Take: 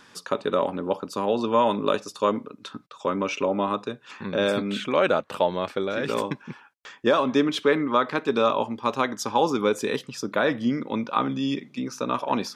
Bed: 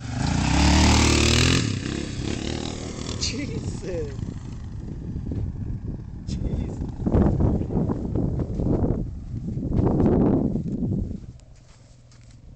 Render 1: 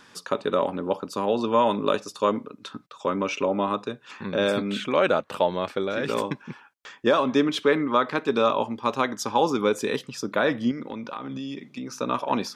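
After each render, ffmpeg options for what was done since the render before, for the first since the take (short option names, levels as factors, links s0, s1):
-filter_complex "[0:a]asettb=1/sr,asplit=3[s0][s1][s2];[s0]atrim=end=10.714[s3];[s1]atrim=start=10.71:end=11.97,asetpts=PTS-STARTPTS,afade=t=in:d=0.004:c=qsin,afade=t=out:st=1.256:d=0.004:c=qsin,acompressor=threshold=0.0355:ratio=16:attack=3.2:release=140:knee=1:detection=peak[s4];[s2]atrim=start=11.966[s5];[s3][s4]acrossfade=d=0.004:c1=hsin:c2=qsin[s6];[s6][s5]acrossfade=d=0.004:c1=qsin:c2=hsin"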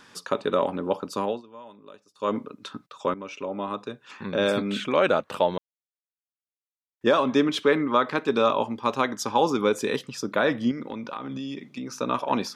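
-filter_complex "[0:a]asplit=6[s0][s1][s2][s3][s4][s5];[s0]atrim=end=1.42,asetpts=PTS-STARTPTS,afade=t=out:st=1.22:d=0.2:silence=0.0630957[s6];[s1]atrim=start=1.42:end=2.15,asetpts=PTS-STARTPTS,volume=0.0631[s7];[s2]atrim=start=2.15:end=3.14,asetpts=PTS-STARTPTS,afade=t=in:d=0.2:silence=0.0630957,afade=t=out:st=0.986:d=0.004:c=hsin:silence=0.211349[s8];[s3]atrim=start=3.14:end=5.58,asetpts=PTS-STARTPTS,afade=t=in:d=1.32:silence=0.211349,afade=t=out:st=2.436:d=0.004:c=hsin[s9];[s4]atrim=start=5.58:end=7.01,asetpts=PTS-STARTPTS,volume=0[s10];[s5]atrim=start=7.01,asetpts=PTS-STARTPTS,afade=t=in:d=0.004:c=hsin[s11];[s6][s7][s8][s9][s10][s11]concat=n=6:v=0:a=1"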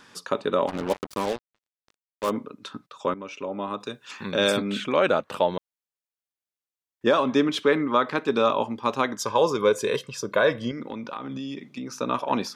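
-filter_complex "[0:a]asplit=3[s0][s1][s2];[s0]afade=t=out:st=0.67:d=0.02[s3];[s1]acrusher=bits=4:mix=0:aa=0.5,afade=t=in:st=0.67:d=0.02,afade=t=out:st=2.29:d=0.02[s4];[s2]afade=t=in:st=2.29:d=0.02[s5];[s3][s4][s5]amix=inputs=3:normalize=0,asettb=1/sr,asplit=3[s6][s7][s8];[s6]atrim=end=3.804[s9];[s7]atrim=start=3.8:end=4.57,asetpts=PTS-STARTPTS,afade=t=in:d=0.004:c=qsin,afade=t=out:st=0.766:d=0.004:c=qsin,highshelf=f=2900:g=11[s10];[s8]atrim=start=4.566[s11];[s9][s10]acrossfade=d=0.004:c1=hsin:c2=qsin[s12];[s12][s11]acrossfade=d=0.004:c1=qsin:c2=hsin,asettb=1/sr,asplit=3[s13][s14][s15];[s13]atrim=end=9.184[s16];[s14]atrim=start=9.18:end=10.73,asetpts=PTS-STARTPTS,afade=t=in:d=0.004:c=qsin,afade=t=out:st=1.546:d=0.004:c=qsin,aecho=1:1:1.9:0.6,atrim=end_sample=68355[s17];[s15]atrim=start=10.726[s18];[s16][s17]acrossfade=d=0.004:c1=hsin:c2=qsin[s19];[s19][s18]acrossfade=d=0.004:c1=qsin:c2=hsin"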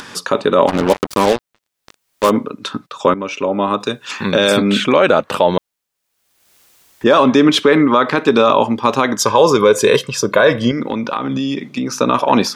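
-af "acompressor=mode=upward:threshold=0.00708:ratio=2.5,alimiter=level_in=5.01:limit=0.891:release=50:level=0:latency=1"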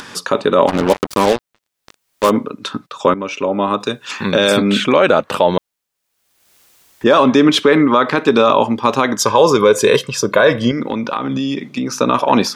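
-af anull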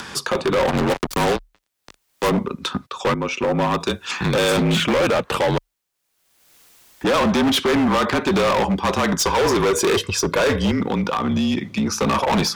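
-af "afreqshift=-37,asoftclip=type=hard:threshold=0.168"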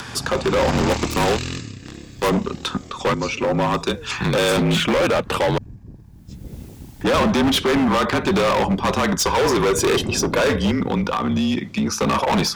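-filter_complex "[1:a]volume=0.355[s0];[0:a][s0]amix=inputs=2:normalize=0"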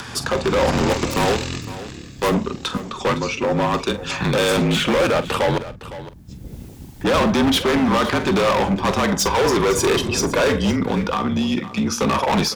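-filter_complex "[0:a]asplit=2[s0][s1];[s1]adelay=45,volume=0.224[s2];[s0][s2]amix=inputs=2:normalize=0,aecho=1:1:510:0.178"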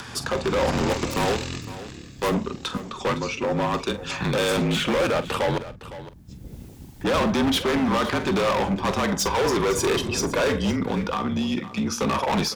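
-af "volume=0.596"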